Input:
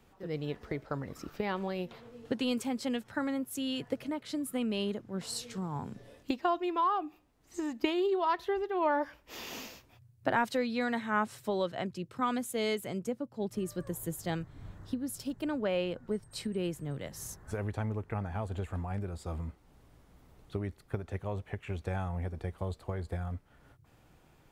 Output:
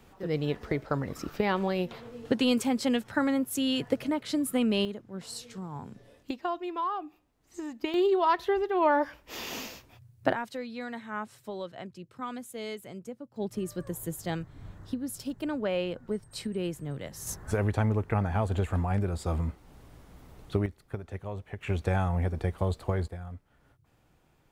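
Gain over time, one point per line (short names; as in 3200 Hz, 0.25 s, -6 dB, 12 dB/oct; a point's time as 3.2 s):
+6.5 dB
from 4.85 s -2.5 dB
from 7.94 s +5 dB
from 10.33 s -6 dB
from 13.36 s +1.5 dB
from 17.27 s +8 dB
from 20.66 s -1 dB
from 21.61 s +7.5 dB
from 23.08 s -4 dB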